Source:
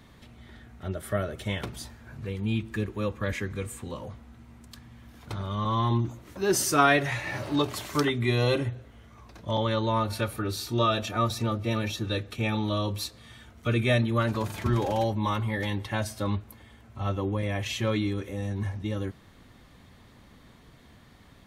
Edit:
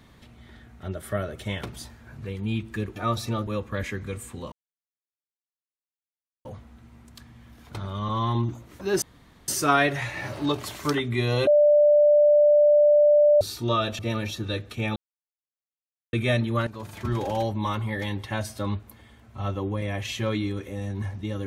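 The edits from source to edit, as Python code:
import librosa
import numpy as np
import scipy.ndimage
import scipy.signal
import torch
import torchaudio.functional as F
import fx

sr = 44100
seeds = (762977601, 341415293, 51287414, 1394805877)

y = fx.edit(x, sr, fx.insert_silence(at_s=4.01, length_s=1.93),
    fx.insert_room_tone(at_s=6.58, length_s=0.46),
    fx.bleep(start_s=8.57, length_s=1.94, hz=591.0, db=-13.5),
    fx.move(start_s=11.09, length_s=0.51, to_s=2.96),
    fx.silence(start_s=12.57, length_s=1.17),
    fx.fade_in_from(start_s=14.28, length_s=0.84, curve='qsin', floor_db=-14.0), tone=tone)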